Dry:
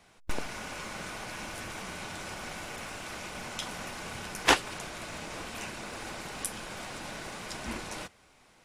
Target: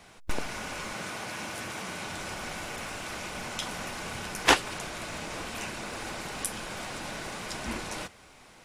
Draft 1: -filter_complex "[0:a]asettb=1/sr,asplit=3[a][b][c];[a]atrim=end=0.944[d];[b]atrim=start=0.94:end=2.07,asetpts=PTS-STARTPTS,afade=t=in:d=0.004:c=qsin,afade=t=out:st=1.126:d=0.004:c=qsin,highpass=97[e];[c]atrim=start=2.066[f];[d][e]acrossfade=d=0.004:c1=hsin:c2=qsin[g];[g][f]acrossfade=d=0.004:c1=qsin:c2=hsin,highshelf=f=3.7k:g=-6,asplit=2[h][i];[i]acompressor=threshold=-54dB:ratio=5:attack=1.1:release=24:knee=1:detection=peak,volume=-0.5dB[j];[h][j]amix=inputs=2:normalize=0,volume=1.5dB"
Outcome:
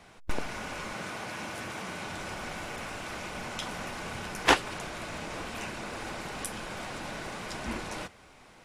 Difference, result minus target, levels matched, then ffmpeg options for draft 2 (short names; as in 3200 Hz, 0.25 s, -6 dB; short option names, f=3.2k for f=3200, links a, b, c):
8000 Hz band -3.5 dB
-filter_complex "[0:a]asettb=1/sr,asplit=3[a][b][c];[a]atrim=end=0.944[d];[b]atrim=start=0.94:end=2.07,asetpts=PTS-STARTPTS,afade=t=in:d=0.004:c=qsin,afade=t=out:st=1.126:d=0.004:c=qsin,highpass=97[e];[c]atrim=start=2.066[f];[d][e]acrossfade=d=0.004:c1=hsin:c2=qsin[g];[g][f]acrossfade=d=0.004:c1=qsin:c2=hsin,asplit=2[h][i];[i]acompressor=threshold=-54dB:ratio=5:attack=1.1:release=24:knee=1:detection=peak,volume=-0.5dB[j];[h][j]amix=inputs=2:normalize=0,volume=1.5dB"